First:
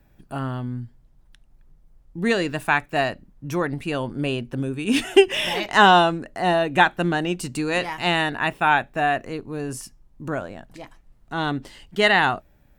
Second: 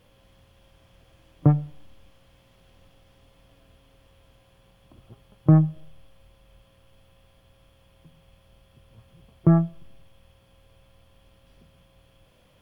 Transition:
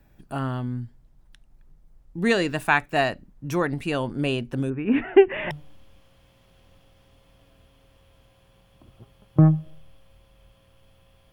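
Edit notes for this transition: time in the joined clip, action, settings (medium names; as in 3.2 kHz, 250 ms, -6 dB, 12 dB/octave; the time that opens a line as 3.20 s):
first
4.70–5.51 s: steep low-pass 2.2 kHz 36 dB/octave
5.51 s: go over to second from 1.61 s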